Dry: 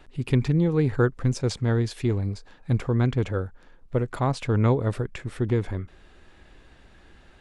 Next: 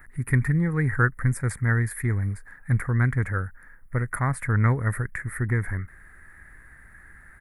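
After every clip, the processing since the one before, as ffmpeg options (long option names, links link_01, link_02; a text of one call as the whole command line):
ffmpeg -i in.wav -af "firequalizer=gain_entry='entry(120,0);entry(340,-10);entry(560,-10);entry(860,-6);entry(1300,4);entry(1900,13);entry(2800,-23);entry(6100,-14);entry(10000,15)':delay=0.05:min_phase=1,volume=1.5dB" out.wav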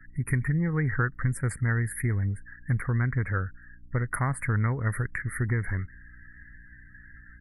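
ffmpeg -i in.wav -af "acompressor=threshold=-22dB:ratio=6,afftdn=noise_reduction=29:noise_floor=-47,aeval=exprs='val(0)+0.002*(sin(2*PI*60*n/s)+sin(2*PI*2*60*n/s)/2+sin(2*PI*3*60*n/s)/3+sin(2*PI*4*60*n/s)/4+sin(2*PI*5*60*n/s)/5)':channel_layout=same" out.wav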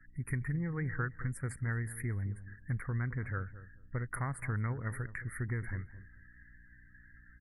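ffmpeg -i in.wav -filter_complex "[0:a]asplit=2[link_01][link_02];[link_02]adelay=217,lowpass=frequency=950:poles=1,volume=-13.5dB,asplit=2[link_03][link_04];[link_04]adelay=217,lowpass=frequency=950:poles=1,volume=0.21[link_05];[link_01][link_03][link_05]amix=inputs=3:normalize=0,volume=-9dB" out.wav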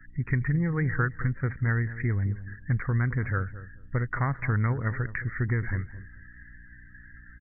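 ffmpeg -i in.wav -af "aresample=8000,aresample=44100,volume=9dB" out.wav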